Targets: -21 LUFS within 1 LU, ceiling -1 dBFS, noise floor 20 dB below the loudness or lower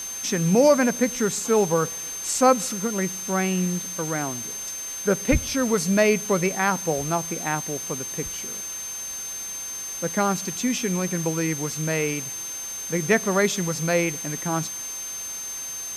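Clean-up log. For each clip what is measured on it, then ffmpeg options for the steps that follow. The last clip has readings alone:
steady tone 6300 Hz; tone level -31 dBFS; noise floor -33 dBFS; noise floor target -44 dBFS; loudness -24.0 LUFS; peak -6.5 dBFS; loudness target -21.0 LUFS
-> -af "bandreject=f=6.3k:w=30"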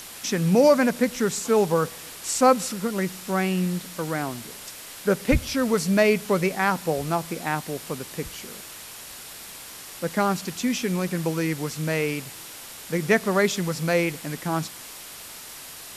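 steady tone none; noise floor -41 dBFS; noise floor target -45 dBFS
-> -af "afftdn=nr=6:nf=-41"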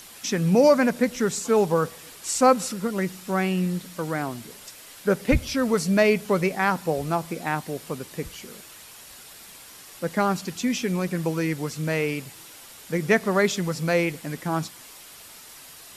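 noise floor -46 dBFS; loudness -24.5 LUFS; peak -7.0 dBFS; loudness target -21.0 LUFS
-> -af "volume=3.5dB"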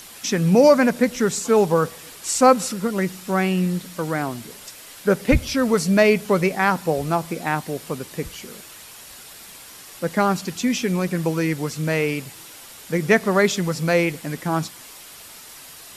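loudness -21.0 LUFS; peak -3.5 dBFS; noise floor -42 dBFS

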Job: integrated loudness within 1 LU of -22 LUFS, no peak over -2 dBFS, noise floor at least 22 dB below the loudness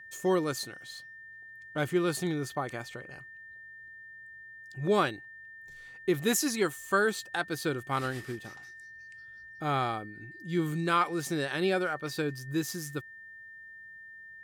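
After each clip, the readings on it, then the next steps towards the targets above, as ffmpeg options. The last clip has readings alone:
steady tone 1800 Hz; tone level -46 dBFS; loudness -31.0 LUFS; peak -12.5 dBFS; loudness target -22.0 LUFS
-> -af "bandreject=f=1.8k:w=30"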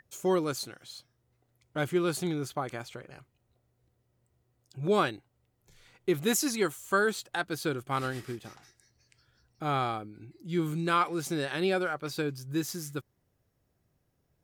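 steady tone none; loudness -31.0 LUFS; peak -13.0 dBFS; loudness target -22.0 LUFS
-> -af "volume=9dB"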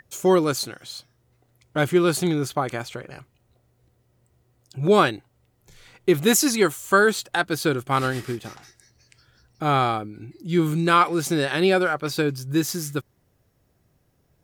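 loudness -22.0 LUFS; peak -4.0 dBFS; noise floor -67 dBFS

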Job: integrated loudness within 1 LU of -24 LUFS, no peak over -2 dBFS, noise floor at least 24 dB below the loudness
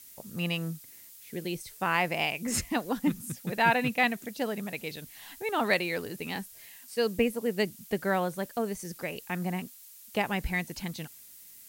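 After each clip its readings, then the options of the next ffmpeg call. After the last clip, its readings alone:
noise floor -51 dBFS; noise floor target -55 dBFS; loudness -30.5 LUFS; peak -11.0 dBFS; loudness target -24.0 LUFS
-> -af "afftdn=nr=6:nf=-51"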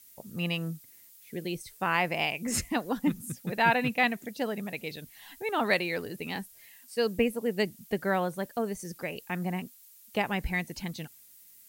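noise floor -55 dBFS; loudness -31.0 LUFS; peak -11.0 dBFS; loudness target -24.0 LUFS
-> -af "volume=7dB"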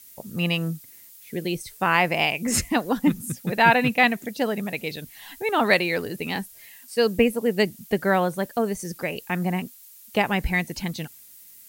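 loudness -24.0 LUFS; peak -4.0 dBFS; noise floor -48 dBFS

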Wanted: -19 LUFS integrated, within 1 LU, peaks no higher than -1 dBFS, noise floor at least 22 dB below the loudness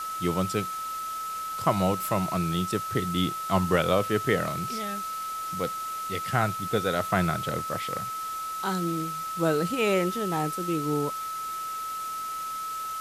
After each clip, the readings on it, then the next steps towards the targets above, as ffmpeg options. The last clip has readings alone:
steady tone 1300 Hz; tone level -31 dBFS; noise floor -34 dBFS; noise floor target -50 dBFS; loudness -28.0 LUFS; peak -8.0 dBFS; loudness target -19.0 LUFS
-> -af "bandreject=f=1.3k:w=30"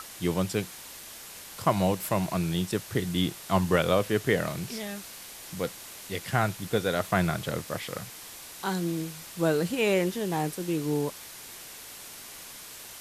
steady tone none; noise floor -45 dBFS; noise floor target -51 dBFS
-> -af "afftdn=nr=6:nf=-45"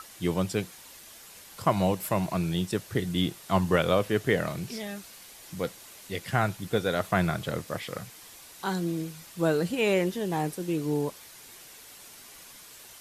noise floor -49 dBFS; noise floor target -51 dBFS
-> -af "afftdn=nr=6:nf=-49"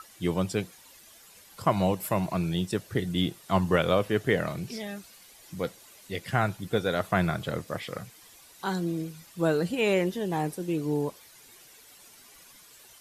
noise floor -54 dBFS; loudness -29.0 LUFS; peak -8.5 dBFS; loudness target -19.0 LUFS
-> -af "volume=10dB,alimiter=limit=-1dB:level=0:latency=1"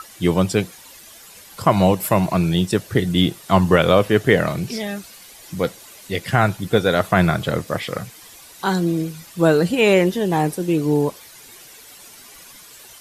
loudness -19.0 LUFS; peak -1.0 dBFS; noise floor -44 dBFS

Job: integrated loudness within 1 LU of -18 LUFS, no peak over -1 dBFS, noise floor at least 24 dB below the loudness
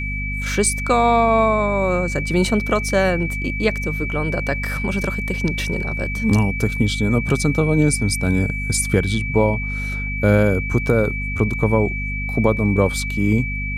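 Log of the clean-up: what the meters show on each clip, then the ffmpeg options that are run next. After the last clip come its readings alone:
hum 50 Hz; harmonics up to 250 Hz; hum level -24 dBFS; steady tone 2300 Hz; tone level -26 dBFS; loudness -19.5 LUFS; peak -3.5 dBFS; loudness target -18.0 LUFS
-> -af "bandreject=f=50:t=h:w=4,bandreject=f=100:t=h:w=4,bandreject=f=150:t=h:w=4,bandreject=f=200:t=h:w=4,bandreject=f=250:t=h:w=4"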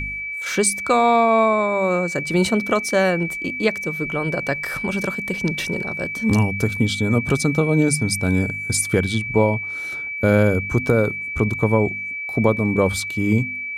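hum none; steady tone 2300 Hz; tone level -26 dBFS
-> -af "bandreject=f=2.3k:w=30"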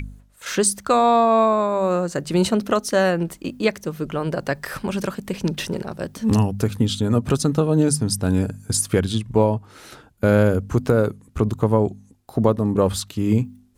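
steady tone none; loudness -21.0 LUFS; peak -4.5 dBFS; loudness target -18.0 LUFS
-> -af "volume=3dB"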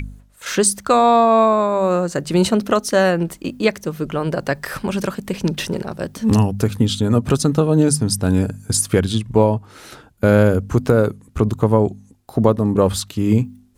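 loudness -18.0 LUFS; peak -1.5 dBFS; noise floor -49 dBFS

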